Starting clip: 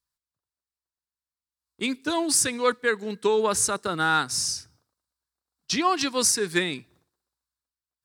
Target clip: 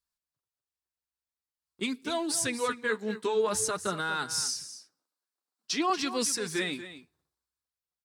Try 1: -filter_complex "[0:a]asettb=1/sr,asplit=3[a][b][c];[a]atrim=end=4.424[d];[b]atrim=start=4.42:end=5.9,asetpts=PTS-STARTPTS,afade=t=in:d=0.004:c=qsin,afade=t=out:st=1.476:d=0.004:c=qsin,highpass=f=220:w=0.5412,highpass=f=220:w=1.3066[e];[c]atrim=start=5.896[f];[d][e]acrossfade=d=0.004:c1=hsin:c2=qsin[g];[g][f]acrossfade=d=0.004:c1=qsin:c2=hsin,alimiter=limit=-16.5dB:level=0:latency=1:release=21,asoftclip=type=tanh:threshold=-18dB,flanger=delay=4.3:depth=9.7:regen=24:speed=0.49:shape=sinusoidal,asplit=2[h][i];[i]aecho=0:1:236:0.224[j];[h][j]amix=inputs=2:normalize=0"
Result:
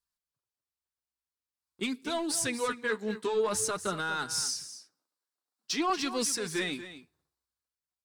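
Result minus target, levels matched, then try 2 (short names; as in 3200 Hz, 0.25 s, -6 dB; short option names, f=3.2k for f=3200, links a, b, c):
soft clip: distortion +21 dB
-filter_complex "[0:a]asettb=1/sr,asplit=3[a][b][c];[a]atrim=end=4.424[d];[b]atrim=start=4.42:end=5.9,asetpts=PTS-STARTPTS,afade=t=in:d=0.004:c=qsin,afade=t=out:st=1.476:d=0.004:c=qsin,highpass=f=220:w=0.5412,highpass=f=220:w=1.3066[e];[c]atrim=start=5.896[f];[d][e]acrossfade=d=0.004:c1=hsin:c2=qsin[g];[g][f]acrossfade=d=0.004:c1=qsin:c2=hsin,alimiter=limit=-16.5dB:level=0:latency=1:release=21,asoftclip=type=tanh:threshold=-6.5dB,flanger=delay=4.3:depth=9.7:regen=24:speed=0.49:shape=sinusoidal,asplit=2[h][i];[i]aecho=0:1:236:0.224[j];[h][j]amix=inputs=2:normalize=0"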